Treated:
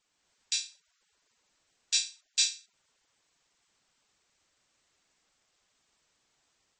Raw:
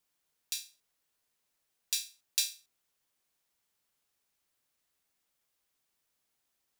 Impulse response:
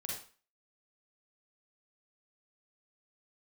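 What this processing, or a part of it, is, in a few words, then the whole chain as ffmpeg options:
low-bitrate web radio: -af "dynaudnorm=framelen=110:gausssize=3:maxgain=4dB,alimiter=limit=-15.5dB:level=0:latency=1:release=32,volume=6dB" -ar 44100 -c:a libmp3lame -b:a 32k

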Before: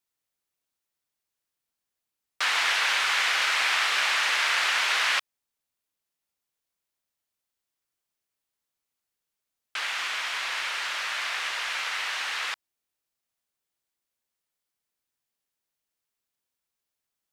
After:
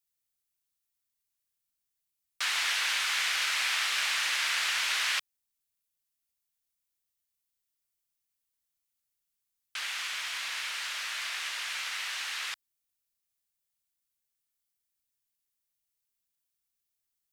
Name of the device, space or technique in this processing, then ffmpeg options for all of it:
smiley-face EQ: -af "lowshelf=frequency=89:gain=6,equalizer=frequency=540:width_type=o:width=2.8:gain=-8.5,highshelf=frequency=7500:gain=7.5,volume=-3.5dB"

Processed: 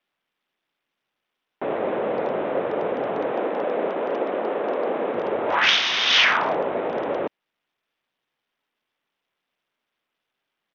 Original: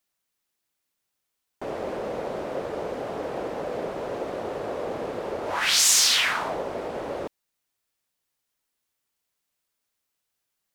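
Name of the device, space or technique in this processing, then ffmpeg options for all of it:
Bluetooth headset: -filter_complex "[0:a]asettb=1/sr,asplit=3[link_01][link_02][link_03];[link_01]atrim=end=3.314[link_04];[link_02]atrim=start=3.31:end=5.14,asetpts=PTS-STARTPTS,afade=type=in:duration=0.004:curve=qsin,afade=type=out:start_time=1.826:duration=0.004:curve=qsin,highpass=frequency=190:width=0.5412,highpass=frequency=190:width=1.3066[link_05];[link_03]atrim=start=5.136[link_06];[link_04][link_05]acrossfade=duration=0.004:curve1=hsin:curve2=qsin[link_07];[link_07][link_06]acrossfade=duration=0.004:curve1=qsin:curve2=hsin,highpass=170,aresample=8000,aresample=44100,volume=6.5dB" -ar 48000 -c:a sbc -b:a 64k

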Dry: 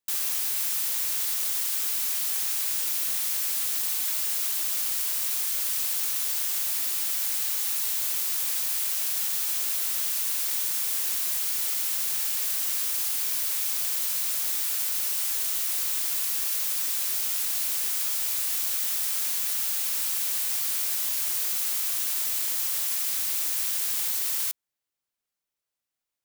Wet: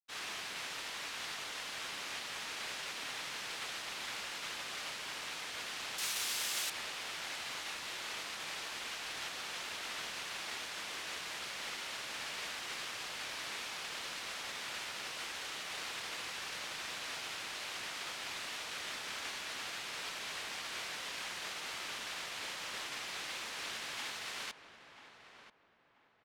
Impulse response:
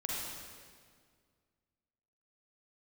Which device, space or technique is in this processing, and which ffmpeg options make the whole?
hearing-loss simulation: -filter_complex "[0:a]lowpass=2900,agate=range=-33dB:threshold=-37dB:ratio=3:detection=peak,asettb=1/sr,asplit=3[link_01][link_02][link_03];[link_01]atrim=end=5.984[link_04];[link_02]atrim=start=5.98:end=6.7,asetpts=PTS-STARTPTS,afade=type=in:duration=0.004:curve=qsin,afade=type=out:start_time=0.716:duration=0.004:curve=qsin,aemphasis=mode=production:type=75kf[link_05];[link_03]atrim=start=6.696[link_06];[link_04][link_05]acrossfade=duration=0.004:curve1=hsin:curve2=qsin[link_07];[link_07][link_06]acrossfade=duration=0.004:curve1=qsin:curve2=hsin,asplit=2[link_08][link_09];[link_09]adelay=986,lowpass=frequency=1500:poles=1,volume=-10dB,asplit=2[link_10][link_11];[link_11]adelay=986,lowpass=frequency=1500:poles=1,volume=0.32,asplit=2[link_12][link_13];[link_13]adelay=986,lowpass=frequency=1500:poles=1,volume=0.32,asplit=2[link_14][link_15];[link_15]adelay=986,lowpass=frequency=1500:poles=1,volume=0.32[link_16];[link_08][link_10][link_12][link_14][link_16]amix=inputs=5:normalize=0,volume=7dB"

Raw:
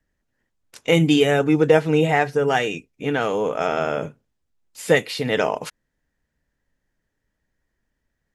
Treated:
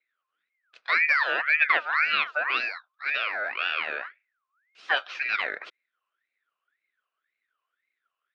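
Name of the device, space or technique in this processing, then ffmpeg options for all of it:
voice changer toy: -af "aeval=exprs='val(0)*sin(2*PI*1600*n/s+1600*0.35/1.9*sin(2*PI*1.9*n/s))':channel_layout=same,highpass=490,equalizer=frequency=880:width_type=q:width=4:gain=-9,equalizer=frequency=1400:width_type=q:width=4:gain=5,equalizer=frequency=2500:width_type=q:width=4:gain=6,lowpass=frequency=4200:width=0.5412,lowpass=frequency=4200:width=1.3066,volume=-6dB"

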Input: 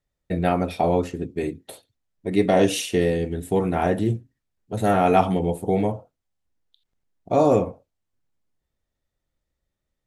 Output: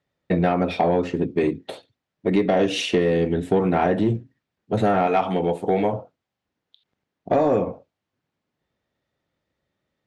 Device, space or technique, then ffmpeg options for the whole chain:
AM radio: -filter_complex "[0:a]asettb=1/sr,asplit=3[link_01][link_02][link_03];[link_01]atrim=end=5.074[link_04];[link_02]atrim=start=5.07:end=5.93,asetpts=PTS-STARTPTS,afade=type=in:duration=0.004:curve=qsin,afade=type=out:start_time=0.856:duration=0.004:curve=qsin,lowshelf=frequency=380:gain=-10[link_05];[link_03]atrim=start=5.926[link_06];[link_04][link_05]acrossfade=duration=0.004:curve1=hsin:curve2=qsin[link_07];[link_07][link_06]acrossfade=duration=0.004:curve1=qsin:curve2=hsin,highpass=130,lowpass=3900,acompressor=threshold=-23dB:ratio=6,asoftclip=type=tanh:threshold=-17.5dB,volume=8.5dB"

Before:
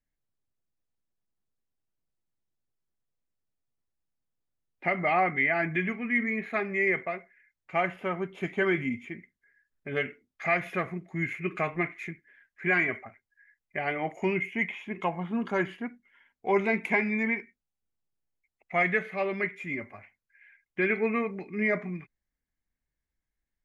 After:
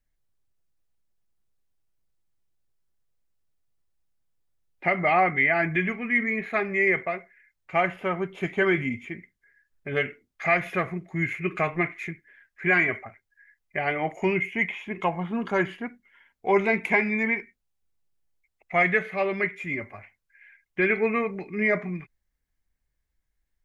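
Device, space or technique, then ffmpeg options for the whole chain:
low shelf boost with a cut just above: -af "lowshelf=frequency=71:gain=7,equalizer=frequency=240:width_type=o:width=0.62:gain=-4,volume=4dB"

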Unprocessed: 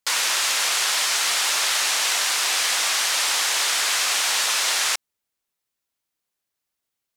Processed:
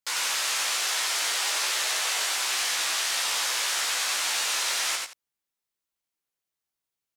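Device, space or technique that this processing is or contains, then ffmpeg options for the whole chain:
slapback doubling: -filter_complex "[0:a]asettb=1/sr,asplit=3[link_01][link_02][link_03];[link_01]atrim=end=0.964[link_04];[link_02]atrim=start=0.96:end=2.26,asetpts=PTS-STARTPTS,afade=type=in:duration=0.004:curve=qsin,afade=type=out:start_time=1.296:duration=0.004:curve=qsin,lowshelf=frequency=220:width_type=q:width=1.5:gain=-13.5[link_05];[link_03]atrim=start=2.256[link_06];[link_04][link_05]acrossfade=duration=0.004:curve1=hsin:curve2=qsin[link_07];[link_07][link_06]acrossfade=duration=0.004:curve1=qsin:curve2=hsin,aecho=1:1:91:0.668,asplit=3[link_08][link_09][link_10];[link_09]adelay=16,volume=-4.5dB[link_11];[link_10]adelay=85,volume=-12dB[link_12];[link_08][link_11][link_12]amix=inputs=3:normalize=0,volume=-8.5dB"

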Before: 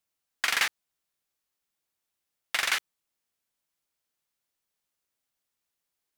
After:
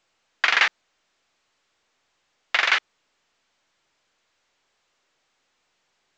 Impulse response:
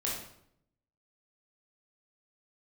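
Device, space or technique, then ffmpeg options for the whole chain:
telephone: -af "highpass=340,lowpass=3400,volume=8.5dB" -ar 16000 -c:a pcm_alaw

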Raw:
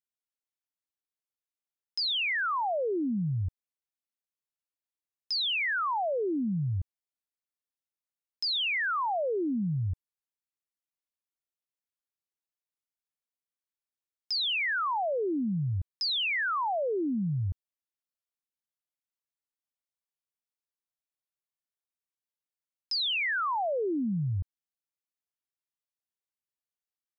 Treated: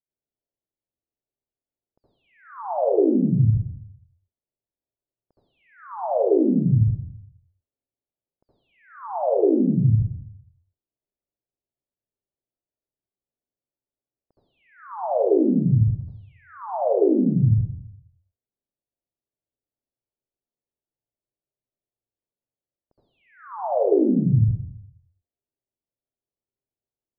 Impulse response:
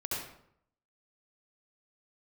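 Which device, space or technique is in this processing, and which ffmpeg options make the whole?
next room: -filter_complex "[0:a]lowpass=frequency=690:width=0.5412,lowpass=frequency=690:width=1.3066[link_01];[1:a]atrim=start_sample=2205[link_02];[link_01][link_02]afir=irnorm=-1:irlink=0,volume=5.5dB"

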